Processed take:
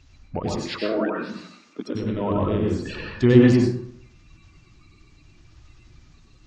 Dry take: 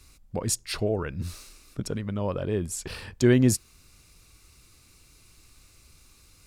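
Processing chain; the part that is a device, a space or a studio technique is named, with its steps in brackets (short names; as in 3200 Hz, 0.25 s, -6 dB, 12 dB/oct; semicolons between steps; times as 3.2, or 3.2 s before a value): clip after many re-uploads (LPF 4400 Hz 24 dB/oct; bin magnitudes rounded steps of 30 dB); 0.47–1.95 Chebyshev high-pass 240 Hz, order 3; plate-style reverb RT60 0.68 s, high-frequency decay 0.5×, pre-delay 85 ms, DRR -1.5 dB; gain +2.5 dB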